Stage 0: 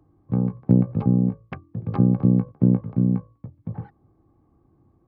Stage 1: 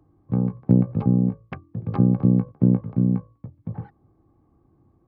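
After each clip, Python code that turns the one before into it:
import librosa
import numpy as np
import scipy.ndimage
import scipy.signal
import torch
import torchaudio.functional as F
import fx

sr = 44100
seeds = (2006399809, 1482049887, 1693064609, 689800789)

y = x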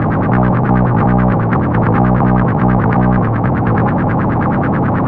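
y = fx.bin_compress(x, sr, power=0.2)
y = fx.power_curve(y, sr, exponent=0.35)
y = fx.filter_lfo_lowpass(y, sr, shape='sine', hz=9.3, low_hz=770.0, high_hz=1700.0, q=3.5)
y = F.gain(torch.from_numpy(y), -3.0).numpy()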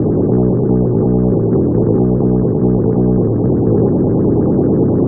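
y = fx.rider(x, sr, range_db=10, speed_s=0.5)
y = fx.lowpass_res(y, sr, hz=400.0, q=4.3)
y = F.gain(torch.from_numpy(y), -3.0).numpy()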